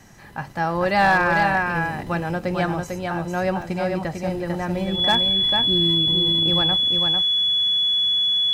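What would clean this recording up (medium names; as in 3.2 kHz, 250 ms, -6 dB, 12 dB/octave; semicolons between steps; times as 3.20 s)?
clip repair -10.5 dBFS; band-stop 3.4 kHz, Q 30; interpolate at 3.62 s, 2.7 ms; inverse comb 448 ms -4.5 dB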